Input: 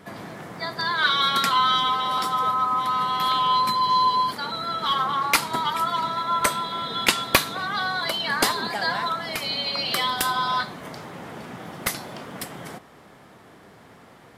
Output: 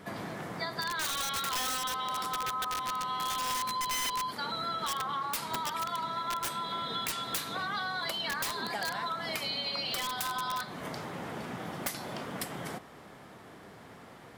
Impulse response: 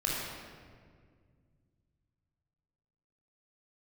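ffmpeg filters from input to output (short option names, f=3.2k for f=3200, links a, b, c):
-af "aeval=exprs='(mod(5.96*val(0)+1,2)-1)/5.96':c=same,acompressor=threshold=-30dB:ratio=6,volume=-1.5dB"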